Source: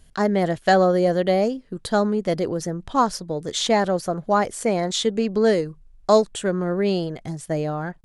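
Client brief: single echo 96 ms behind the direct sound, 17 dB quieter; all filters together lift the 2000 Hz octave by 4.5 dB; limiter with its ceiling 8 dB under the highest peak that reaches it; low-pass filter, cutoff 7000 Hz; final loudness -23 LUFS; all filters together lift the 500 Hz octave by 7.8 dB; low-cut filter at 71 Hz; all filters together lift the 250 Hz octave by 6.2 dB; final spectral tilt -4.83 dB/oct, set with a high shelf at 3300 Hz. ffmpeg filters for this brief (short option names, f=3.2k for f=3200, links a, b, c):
-af "highpass=71,lowpass=7k,equalizer=f=250:t=o:g=6.5,equalizer=f=500:t=o:g=7.5,equalizer=f=2k:t=o:g=3,highshelf=f=3.3k:g=7.5,alimiter=limit=-6dB:level=0:latency=1,aecho=1:1:96:0.141,volume=-6dB"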